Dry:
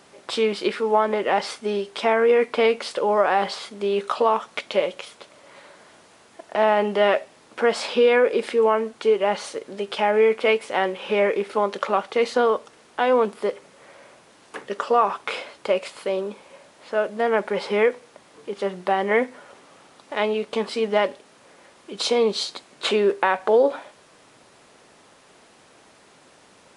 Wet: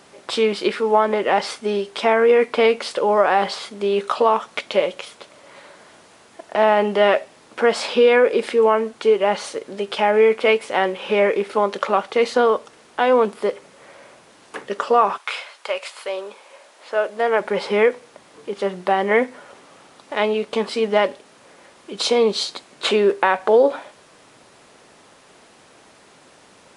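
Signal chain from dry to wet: 15.17–17.40 s: high-pass 1.1 kHz -> 320 Hz 12 dB/octave; trim +3 dB

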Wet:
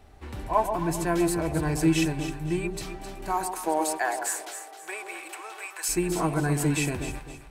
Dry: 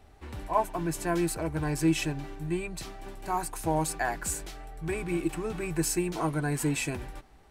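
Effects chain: 3.32–5.88 s: high-pass 250 Hz -> 870 Hz 24 dB/octave; echo whose repeats swap between lows and highs 131 ms, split 920 Hz, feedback 57%, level -5 dB; trim +2.5 dB

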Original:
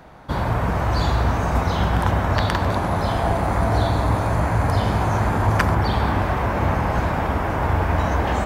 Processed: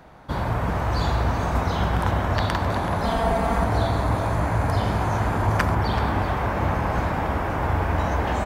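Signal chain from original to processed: 3.03–3.64 s: comb 4.4 ms, depth 79%; speakerphone echo 380 ms, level -8 dB; trim -3 dB

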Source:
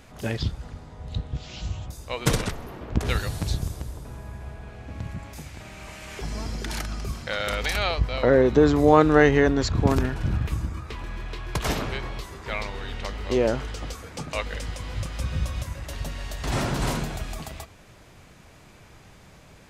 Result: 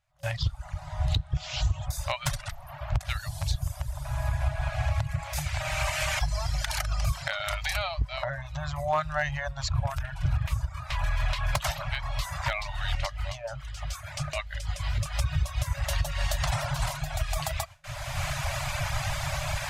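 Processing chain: recorder AGC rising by 23 dB/s; gate with hold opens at -22 dBFS; reverb removal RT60 0.86 s; FFT band-reject 160–550 Hz; overload inside the chain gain 11 dB; 12.95–14.99 s: rotary cabinet horn 6.7 Hz; trim -6.5 dB

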